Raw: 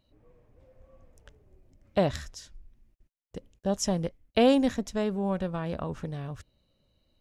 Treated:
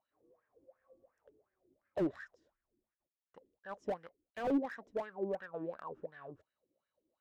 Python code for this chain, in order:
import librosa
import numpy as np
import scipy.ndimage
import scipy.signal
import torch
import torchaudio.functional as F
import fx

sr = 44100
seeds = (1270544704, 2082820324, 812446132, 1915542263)

y = fx.wah_lfo(x, sr, hz=2.8, low_hz=320.0, high_hz=1700.0, q=8.0)
y = fx.slew_limit(y, sr, full_power_hz=8.7)
y = y * librosa.db_to_amplitude(4.5)